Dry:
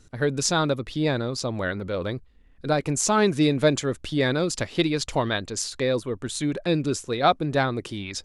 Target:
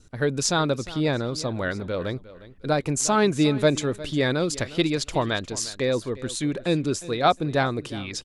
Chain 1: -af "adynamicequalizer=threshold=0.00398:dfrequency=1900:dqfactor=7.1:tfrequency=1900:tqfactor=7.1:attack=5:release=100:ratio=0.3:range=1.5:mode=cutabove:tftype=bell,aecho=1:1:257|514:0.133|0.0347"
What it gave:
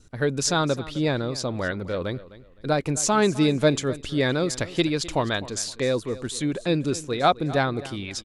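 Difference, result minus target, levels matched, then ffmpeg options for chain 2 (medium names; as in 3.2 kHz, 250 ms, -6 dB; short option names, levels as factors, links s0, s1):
echo 100 ms early
-af "adynamicequalizer=threshold=0.00398:dfrequency=1900:dqfactor=7.1:tfrequency=1900:tqfactor=7.1:attack=5:release=100:ratio=0.3:range=1.5:mode=cutabove:tftype=bell,aecho=1:1:357|714:0.133|0.0347"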